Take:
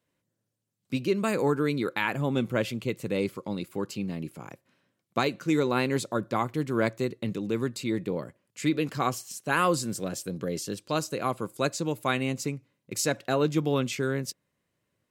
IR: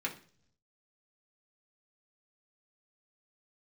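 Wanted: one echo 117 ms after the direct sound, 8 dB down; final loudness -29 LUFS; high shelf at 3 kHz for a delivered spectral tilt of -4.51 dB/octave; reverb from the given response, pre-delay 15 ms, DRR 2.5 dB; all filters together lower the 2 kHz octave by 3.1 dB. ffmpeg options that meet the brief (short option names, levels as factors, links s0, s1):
-filter_complex "[0:a]equalizer=f=2000:t=o:g=-6.5,highshelf=f=3000:g=6,aecho=1:1:117:0.398,asplit=2[s0][s1];[1:a]atrim=start_sample=2205,adelay=15[s2];[s1][s2]afir=irnorm=-1:irlink=0,volume=0.473[s3];[s0][s3]amix=inputs=2:normalize=0,volume=0.794"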